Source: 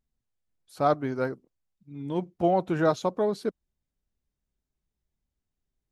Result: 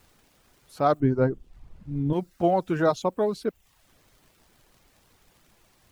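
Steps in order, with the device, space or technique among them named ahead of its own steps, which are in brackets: vinyl LP (crackle; pink noise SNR 31 dB); reverb removal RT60 0.5 s; 1.00–2.13 s: tilt EQ -4 dB/octave; trim +1.5 dB

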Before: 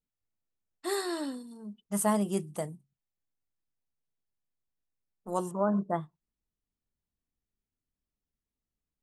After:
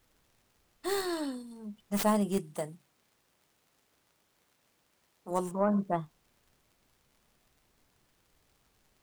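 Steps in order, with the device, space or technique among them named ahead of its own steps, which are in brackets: record under a worn stylus (tracing distortion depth 0.16 ms; crackle; pink noise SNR 34 dB); 2.38–5.31 s: high-pass 210 Hz 6 dB/octave

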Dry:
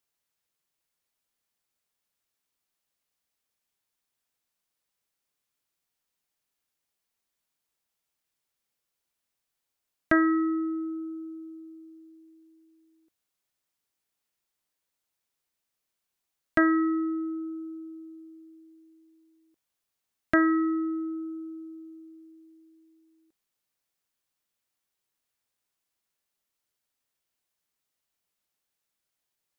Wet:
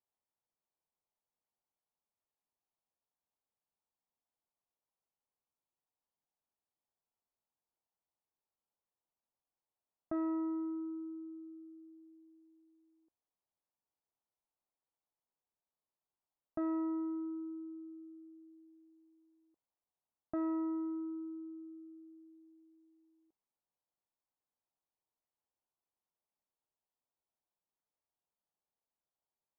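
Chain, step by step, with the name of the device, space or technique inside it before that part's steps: overdriven synthesiser ladder filter (saturation -24 dBFS, distortion -10 dB; four-pole ladder low-pass 1.1 kHz, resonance 40%)

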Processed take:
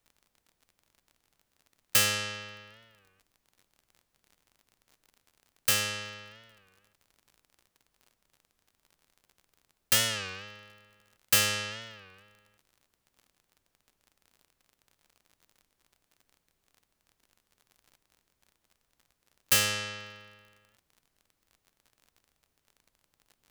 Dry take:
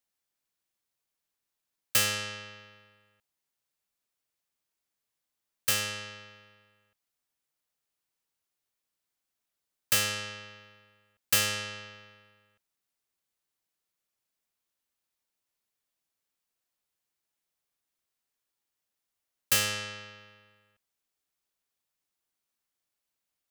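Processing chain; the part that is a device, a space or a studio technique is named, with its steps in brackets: warped LP (warped record 33 1/3 rpm, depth 160 cents; crackle 42 per s -47 dBFS; pink noise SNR 42 dB); trim +1.5 dB

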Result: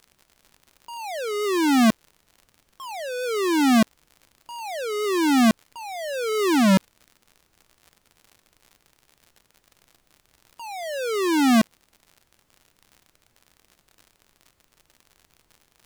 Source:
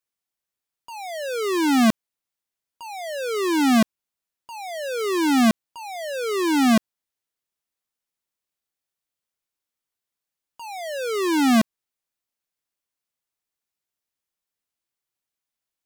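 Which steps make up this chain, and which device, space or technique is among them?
warped LP (warped record 33 1/3 rpm, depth 250 cents; crackle 77 per s -38 dBFS; pink noise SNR 42 dB)

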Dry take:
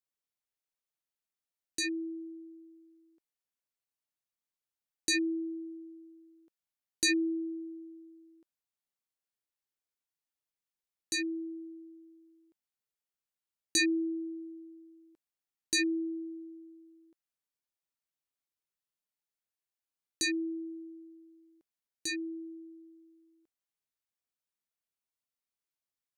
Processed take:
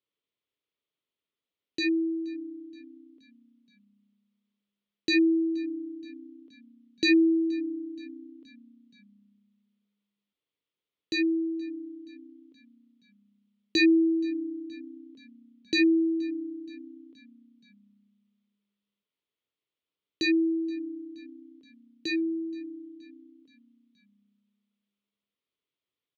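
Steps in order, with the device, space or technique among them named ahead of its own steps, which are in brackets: frequency-shifting delay pedal into a guitar cabinet (frequency-shifting echo 474 ms, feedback 60%, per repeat -31 Hz, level -23.5 dB; cabinet simulation 77–3800 Hz, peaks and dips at 290 Hz +5 dB, 430 Hz +7 dB, 790 Hz -10 dB, 1.6 kHz -8 dB, 3.3 kHz +5 dB); trim +6 dB

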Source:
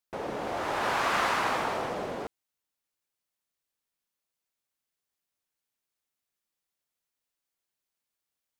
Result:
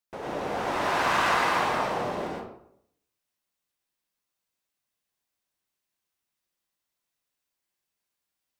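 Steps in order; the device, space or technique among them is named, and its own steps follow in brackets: bathroom (reverberation RT60 0.70 s, pre-delay 94 ms, DRR -3.5 dB); trim -2 dB

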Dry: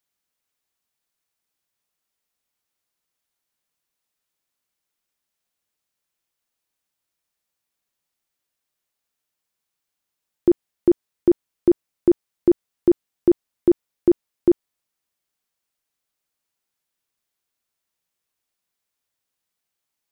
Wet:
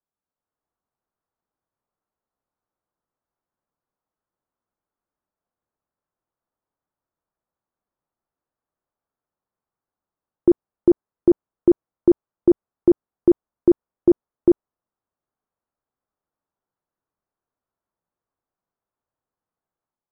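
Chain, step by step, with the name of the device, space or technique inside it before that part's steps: action camera in a waterproof case (low-pass 1.3 kHz 24 dB/octave; level rider gain up to 6 dB; trim -3.5 dB; AAC 96 kbps 48 kHz)

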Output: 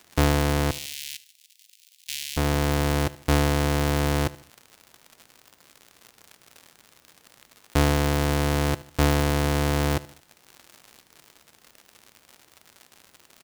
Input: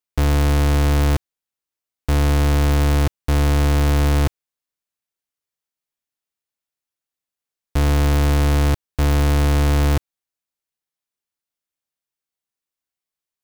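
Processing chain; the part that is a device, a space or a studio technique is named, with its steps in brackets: reverb removal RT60 1.3 s; vinyl LP (crackle 120 per s -36 dBFS; pink noise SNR 40 dB); 0.71–2.37 s: inverse Chebyshev high-pass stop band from 1.3 kHz, stop band 40 dB; high-pass 160 Hz 6 dB/octave; feedback delay 75 ms, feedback 41%, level -19 dB; trim +3 dB

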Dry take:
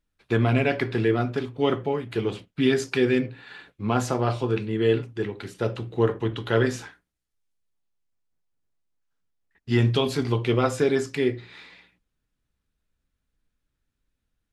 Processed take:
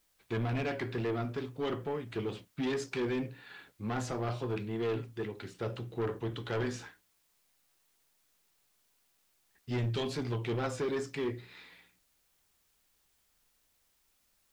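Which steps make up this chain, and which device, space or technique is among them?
compact cassette (saturation -21 dBFS, distortion -10 dB; low-pass 8.5 kHz; wow and flutter; white noise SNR 36 dB); trim -7 dB

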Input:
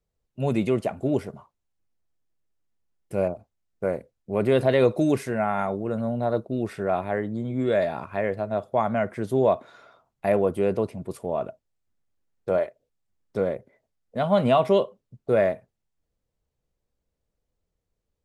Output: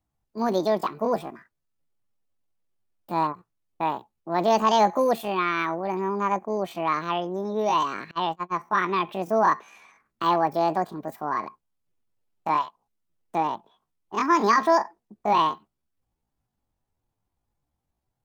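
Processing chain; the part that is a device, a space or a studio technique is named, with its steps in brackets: chipmunk voice (pitch shift +9 st); 8.11–8.59 s: gate -26 dBFS, range -29 dB

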